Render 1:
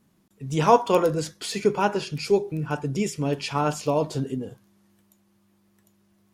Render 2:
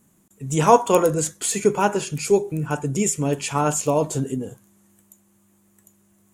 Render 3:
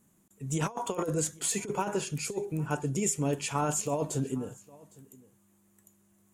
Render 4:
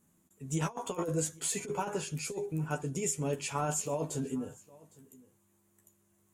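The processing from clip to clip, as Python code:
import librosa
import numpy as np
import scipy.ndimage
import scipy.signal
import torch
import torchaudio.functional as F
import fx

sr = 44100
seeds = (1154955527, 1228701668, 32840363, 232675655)

y1 = fx.high_shelf_res(x, sr, hz=6000.0, db=6.5, q=3.0)
y1 = F.gain(torch.from_numpy(y1), 3.0).numpy()
y2 = fx.over_compress(y1, sr, threshold_db=-20.0, ratio=-0.5)
y2 = y2 + 10.0 ** (-23.0 / 20.0) * np.pad(y2, (int(809 * sr / 1000.0), 0))[:len(y2)]
y2 = F.gain(torch.from_numpy(y2), -8.5).numpy()
y3 = fx.doubler(y2, sr, ms=12.0, db=-5.5)
y3 = F.gain(torch.from_numpy(y3), -4.0).numpy()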